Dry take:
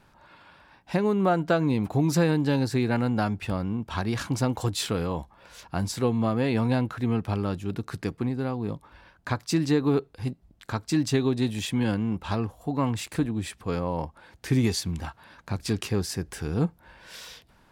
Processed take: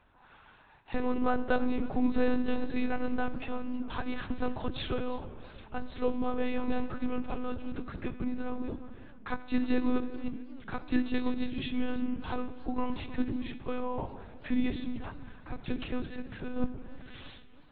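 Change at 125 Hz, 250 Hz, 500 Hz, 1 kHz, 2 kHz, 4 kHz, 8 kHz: −17.5 dB, −5.5 dB, −7.0 dB, −5.5 dB, −5.0 dB, −10.0 dB, below −40 dB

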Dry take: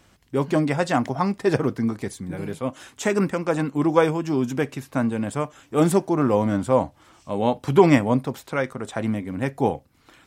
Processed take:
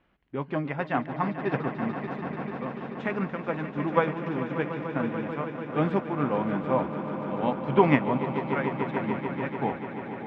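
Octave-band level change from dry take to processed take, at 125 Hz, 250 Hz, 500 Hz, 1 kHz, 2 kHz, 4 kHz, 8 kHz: −5.5 dB, −6.0 dB, −6.5 dB, −2.5 dB, −2.5 dB, −8.5 dB, below −30 dB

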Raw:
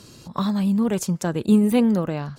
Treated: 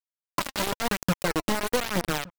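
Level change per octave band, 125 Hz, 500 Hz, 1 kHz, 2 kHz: −8.5, −4.5, +2.0, +7.5 decibels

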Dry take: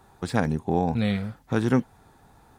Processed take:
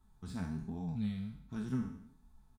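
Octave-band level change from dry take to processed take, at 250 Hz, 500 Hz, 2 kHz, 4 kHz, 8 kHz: −12.0 dB, −24.5 dB, −21.0 dB, −17.5 dB, can't be measured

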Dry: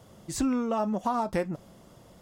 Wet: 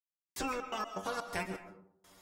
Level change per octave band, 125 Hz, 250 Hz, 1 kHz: −11.5, −16.0, −7.5 decibels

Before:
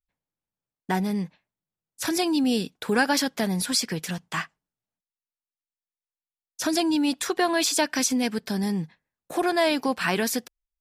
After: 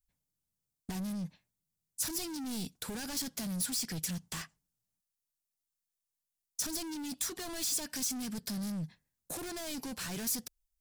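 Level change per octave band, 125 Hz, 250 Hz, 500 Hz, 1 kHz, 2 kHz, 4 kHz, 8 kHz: −8.5, −13.5, −20.0, −20.0, −18.5, −11.0, −5.5 decibels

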